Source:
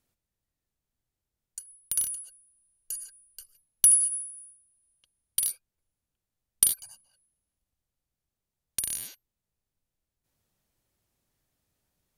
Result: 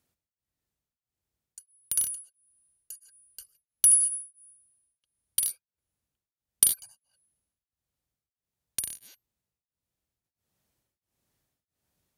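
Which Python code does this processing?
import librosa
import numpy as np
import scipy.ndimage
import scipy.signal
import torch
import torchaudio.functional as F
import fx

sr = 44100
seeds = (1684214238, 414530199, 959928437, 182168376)

y = scipy.signal.sosfilt(scipy.signal.butter(2, 51.0, 'highpass', fs=sr, output='sos'), x)
y = y * np.abs(np.cos(np.pi * 1.5 * np.arange(len(y)) / sr))
y = y * 10.0 ** (1.0 / 20.0)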